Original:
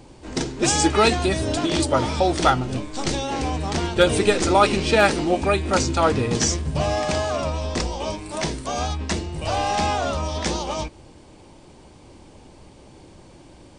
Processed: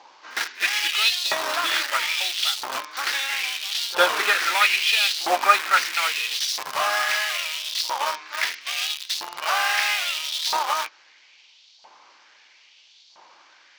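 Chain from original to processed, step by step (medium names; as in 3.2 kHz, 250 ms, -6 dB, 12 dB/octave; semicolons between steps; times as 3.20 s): CVSD coder 32 kbps; in parallel at -5 dB: bit crusher 4-bit; on the sum: LFO high-pass saw up 0.76 Hz 890–4300 Hz; pre-echo 58 ms -22.5 dB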